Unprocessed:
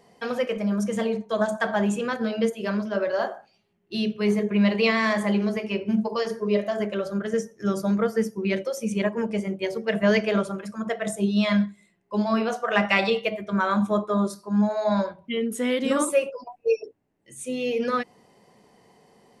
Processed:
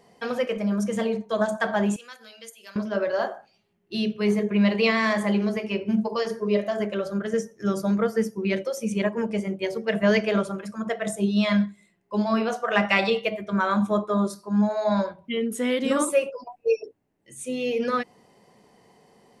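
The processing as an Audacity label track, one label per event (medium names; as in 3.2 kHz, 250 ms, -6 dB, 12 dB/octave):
1.960000	2.760000	differentiator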